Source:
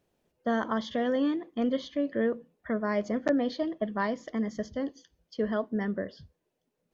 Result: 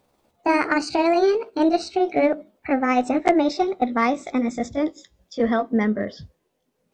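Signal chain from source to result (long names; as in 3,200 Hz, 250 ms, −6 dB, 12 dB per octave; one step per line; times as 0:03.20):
pitch glide at a constant tempo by +6 semitones ending unshifted
in parallel at −12 dB: asymmetric clip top −32.5 dBFS, bottom −20 dBFS
on the sum: level +8.5 dB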